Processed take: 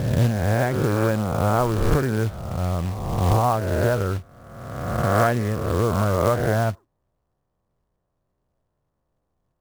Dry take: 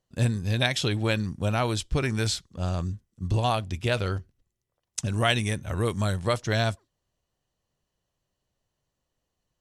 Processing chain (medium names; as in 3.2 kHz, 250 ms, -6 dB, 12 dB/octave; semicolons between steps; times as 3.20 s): reverse spectral sustain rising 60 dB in 1.54 s; low-pass 1.4 kHz 24 dB/octave; short-mantissa float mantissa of 2-bit; trim +3.5 dB